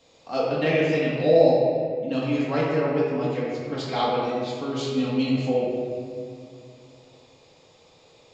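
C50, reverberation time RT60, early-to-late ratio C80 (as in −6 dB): −1.5 dB, 2.2 s, 0.5 dB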